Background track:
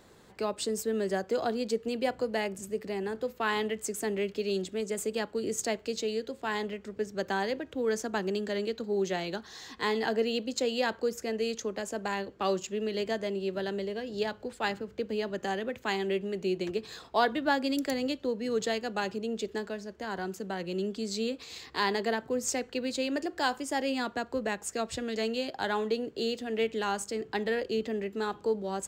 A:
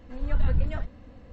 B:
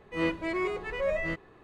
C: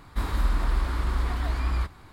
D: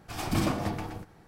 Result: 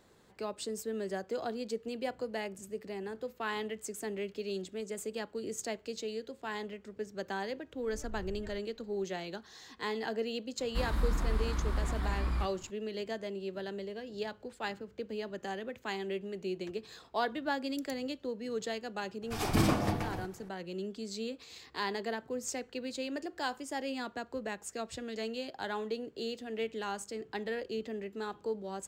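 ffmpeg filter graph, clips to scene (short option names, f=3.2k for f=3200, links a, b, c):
-filter_complex "[0:a]volume=-6.5dB[a];[1:a]acompressor=threshold=-21dB:ratio=6:attack=3.2:release=140:knee=1:detection=peak[b];[3:a]equalizer=f=180:t=o:w=1.1:g=6.5[c];[b]atrim=end=1.32,asetpts=PTS-STARTPTS,volume=-17dB,afade=t=in:d=0.004:c=hsin,afade=t=out:st=1.316:d=0.004:c=hsin,adelay=7720[d];[c]atrim=end=2.12,asetpts=PTS-STARTPTS,volume=-7dB,afade=t=in:d=0.004:c=hsin,afade=t=out:st=2.116:d=0.004:c=hsin,adelay=10590[e];[4:a]atrim=end=1.27,asetpts=PTS-STARTPTS,afade=t=in:d=0.004:c=hsin,afade=t=out:st=1.266:d=0.004:c=hsin,adelay=19220[f];[a][d][e][f]amix=inputs=4:normalize=0"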